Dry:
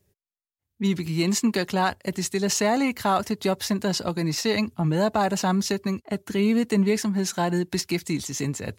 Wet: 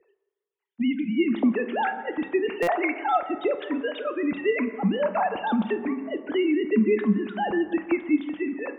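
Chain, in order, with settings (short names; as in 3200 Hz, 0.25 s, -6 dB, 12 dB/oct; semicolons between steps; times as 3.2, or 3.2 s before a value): sine-wave speech; on a send at -8 dB: reverb RT60 1.4 s, pre-delay 8 ms; on the sum: stuck buffer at 2.62, samples 256, times 8; three-band squash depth 40%; gain -1.5 dB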